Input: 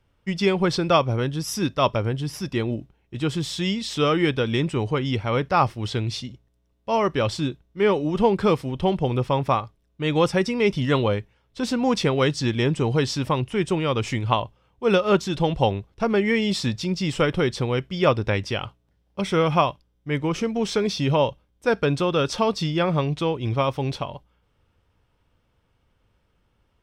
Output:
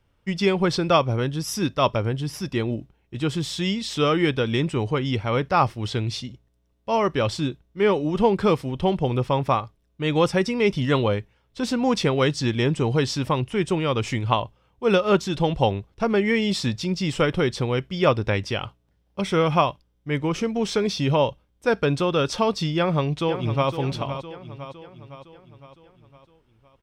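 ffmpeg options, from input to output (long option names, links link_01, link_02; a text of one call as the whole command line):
ffmpeg -i in.wav -filter_complex "[0:a]asplit=2[link_01][link_02];[link_02]afade=type=in:start_time=22.77:duration=0.01,afade=type=out:start_time=23.7:duration=0.01,aecho=0:1:510|1020|1530|2040|2550|3060:0.316228|0.173925|0.0956589|0.0526124|0.0289368|0.0159152[link_03];[link_01][link_03]amix=inputs=2:normalize=0" out.wav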